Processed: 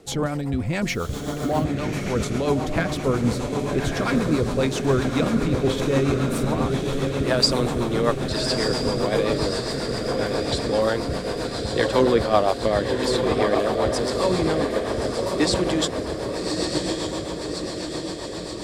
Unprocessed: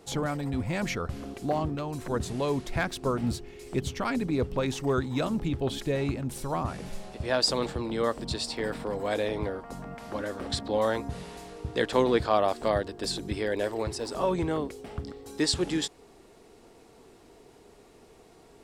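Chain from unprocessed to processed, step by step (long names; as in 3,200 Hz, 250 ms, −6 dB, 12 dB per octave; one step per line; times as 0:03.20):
feedback delay with all-pass diffusion 1,197 ms, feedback 64%, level −3 dB
0:00.88–0:01.64: bit-depth reduction 8 bits, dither none
rotating-speaker cabinet horn 7.5 Hz
level +7 dB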